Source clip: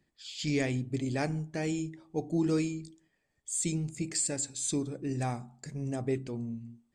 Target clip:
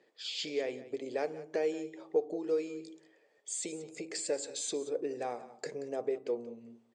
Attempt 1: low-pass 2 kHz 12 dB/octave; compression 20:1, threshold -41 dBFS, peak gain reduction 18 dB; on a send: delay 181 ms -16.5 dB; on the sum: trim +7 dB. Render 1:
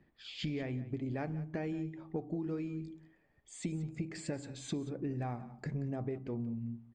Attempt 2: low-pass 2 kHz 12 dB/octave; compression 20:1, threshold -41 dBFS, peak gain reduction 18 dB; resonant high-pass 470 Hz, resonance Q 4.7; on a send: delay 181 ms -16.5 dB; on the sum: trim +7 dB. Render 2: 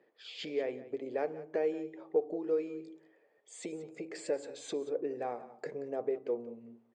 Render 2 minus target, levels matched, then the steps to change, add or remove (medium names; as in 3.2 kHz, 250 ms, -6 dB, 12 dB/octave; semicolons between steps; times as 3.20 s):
4 kHz band -7.0 dB
change: low-pass 5.2 kHz 12 dB/octave